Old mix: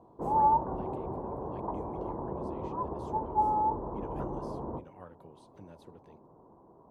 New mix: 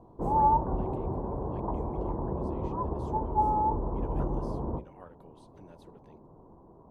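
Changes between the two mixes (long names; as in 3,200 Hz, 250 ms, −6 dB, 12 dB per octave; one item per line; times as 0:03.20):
background: remove high-pass filter 430 Hz 6 dB per octave
master: add low-shelf EQ 140 Hz −7.5 dB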